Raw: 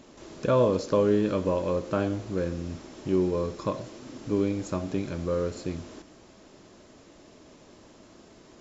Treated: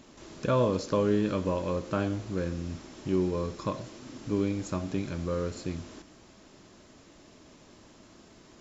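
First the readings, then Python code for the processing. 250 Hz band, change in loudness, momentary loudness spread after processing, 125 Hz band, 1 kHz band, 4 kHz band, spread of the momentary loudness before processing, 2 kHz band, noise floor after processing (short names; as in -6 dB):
-2.0 dB, -3.0 dB, 14 LU, -0.5 dB, -1.5 dB, 0.0 dB, 15 LU, -0.5 dB, -56 dBFS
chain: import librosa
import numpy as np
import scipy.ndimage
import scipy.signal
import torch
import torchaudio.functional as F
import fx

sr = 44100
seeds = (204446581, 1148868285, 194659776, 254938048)

y = fx.peak_eq(x, sr, hz=500.0, db=-4.5, octaves=1.5)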